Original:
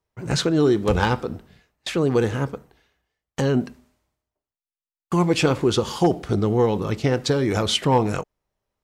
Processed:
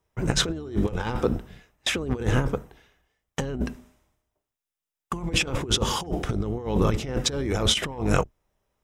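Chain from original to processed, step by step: octave divider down 2 oct, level -4 dB; band-stop 4.4 kHz, Q 6; compressor with a negative ratio -24 dBFS, ratio -0.5

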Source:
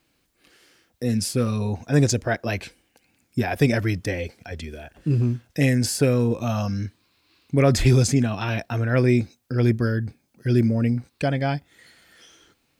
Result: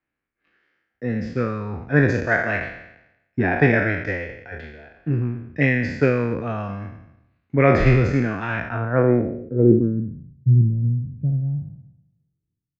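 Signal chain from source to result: spectral sustain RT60 1.22 s; transient shaper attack +3 dB, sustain -6 dB; low-pass sweep 1.8 kHz -> 140 Hz, 8.59–10.37 s; resampled via 16 kHz; three bands expanded up and down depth 40%; trim -2.5 dB

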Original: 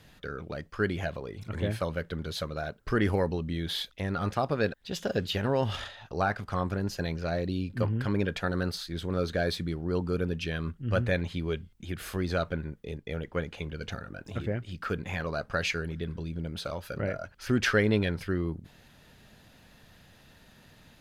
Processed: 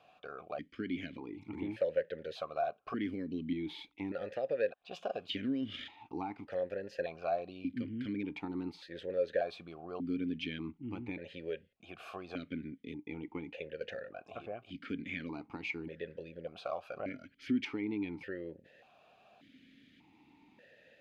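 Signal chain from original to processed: compression, threshold -28 dBFS, peak gain reduction 9.5 dB; stepped vowel filter 1.7 Hz; trim +8 dB

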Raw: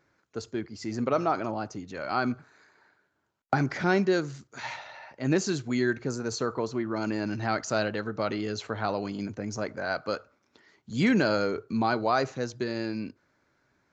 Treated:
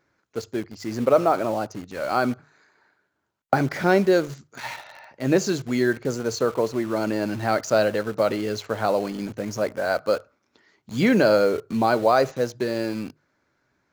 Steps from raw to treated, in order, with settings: dynamic bell 550 Hz, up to +8 dB, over -42 dBFS, Q 2; hum notches 50/100/150 Hz; in parallel at -7 dB: bit crusher 6-bit

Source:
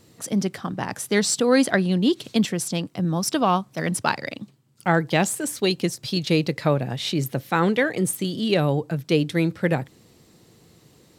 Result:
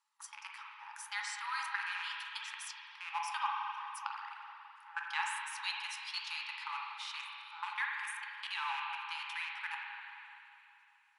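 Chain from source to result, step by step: rattle on loud lows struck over -31 dBFS, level -22 dBFS; ten-band graphic EQ 2 kHz -6 dB, 4 kHz -9 dB, 8 kHz -11 dB; peak limiter -13 dBFS, peak gain reduction 7 dB; level held to a coarse grid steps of 23 dB; FFT band-pass 810–11000 Hz; dynamic bell 4.7 kHz, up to +4 dB, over -56 dBFS, Q 0.93; spring tank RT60 2.9 s, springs 41/48 ms, chirp 35 ms, DRR -1 dB; flange 0.74 Hz, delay 9.3 ms, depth 9.6 ms, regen -70%; trim +3 dB

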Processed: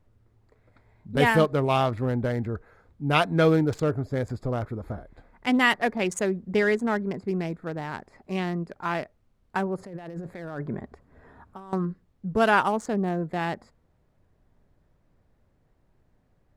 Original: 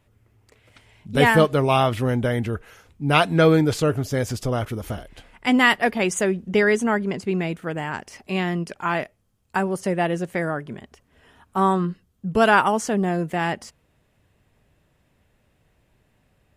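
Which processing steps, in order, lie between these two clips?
local Wiener filter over 15 samples; 9.78–11.73 s: compressor with a negative ratio -33 dBFS, ratio -1; added noise brown -62 dBFS; trim -4 dB

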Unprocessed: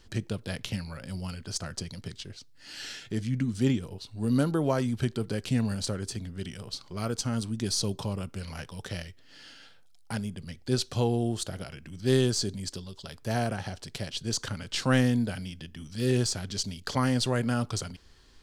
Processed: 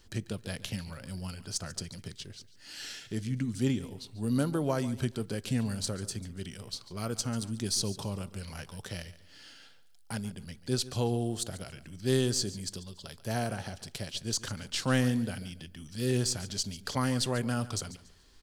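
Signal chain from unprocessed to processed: treble shelf 8.1 kHz +8.5 dB; on a send: feedback delay 142 ms, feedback 29%, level -16.5 dB; on the sum: trim -3.5 dB

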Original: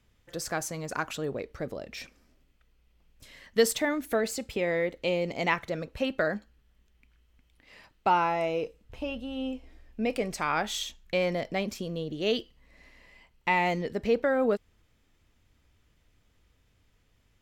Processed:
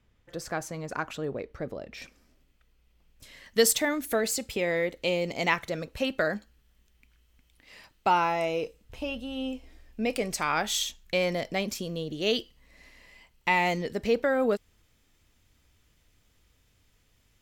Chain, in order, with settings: treble shelf 3.8 kHz -7.5 dB, from 2.02 s +3 dB, from 3.46 s +8.5 dB

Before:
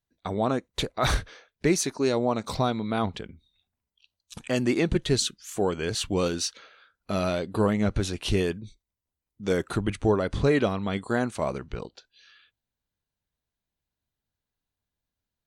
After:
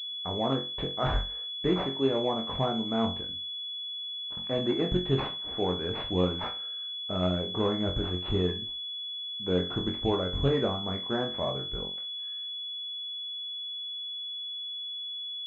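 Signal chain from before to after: flutter echo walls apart 3.8 m, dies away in 0.31 s; class-D stage that switches slowly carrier 3.4 kHz; trim -5 dB

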